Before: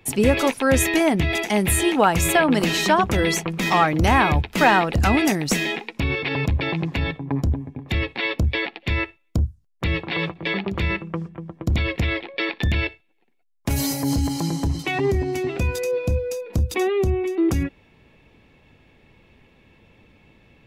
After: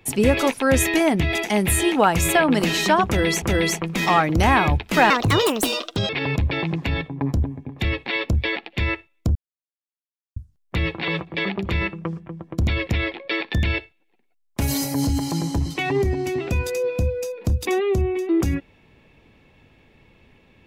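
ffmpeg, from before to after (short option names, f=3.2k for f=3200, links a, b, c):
-filter_complex "[0:a]asplit=5[a][b][c][d][e];[a]atrim=end=3.422[f];[b]atrim=start=3.058:end=4.744[g];[c]atrim=start=4.74:end=6.19,asetpts=PTS-STARTPTS,asetrate=64386,aresample=44100[h];[d]atrim=start=6.186:end=9.45,asetpts=PTS-STARTPTS,afade=t=out:st=3.26:d=0.004:c=hsin,apad=pad_dur=1.01[i];[e]atrim=start=9.45,asetpts=PTS-STARTPTS,afade=t=in:d=0.004:c=hsin[j];[f][g]acrossfade=d=0.004:c1=hsin:c2=hsin[k];[k][h]acrossfade=d=0.004:c1=hsin:c2=hsin[l];[i][j]concat=n=2:v=0:a=1[m];[l][m]acrossfade=d=0.004:c1=hsin:c2=hsin"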